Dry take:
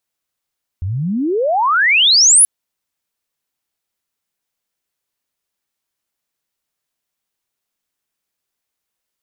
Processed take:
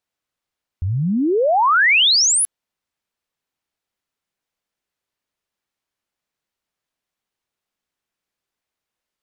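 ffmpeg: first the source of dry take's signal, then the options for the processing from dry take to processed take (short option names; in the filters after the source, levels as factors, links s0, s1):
-f lavfi -i "aevalsrc='pow(10,(-18+13*t/1.63)/20)*sin(2*PI*84*1.63/log(11000/84)*(exp(log(11000/84)*t/1.63)-1))':d=1.63:s=44100"
-af "lowpass=f=3600:p=1"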